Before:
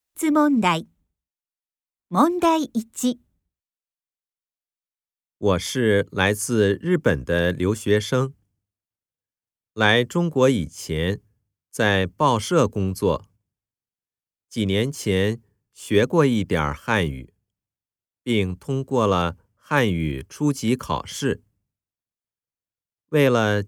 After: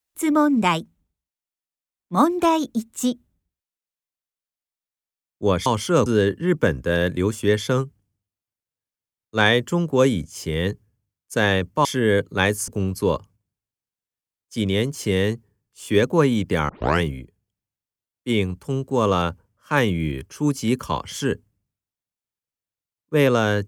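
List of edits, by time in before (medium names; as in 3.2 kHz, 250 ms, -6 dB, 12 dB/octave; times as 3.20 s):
5.66–6.49 s: swap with 12.28–12.68 s
16.69 s: tape start 0.33 s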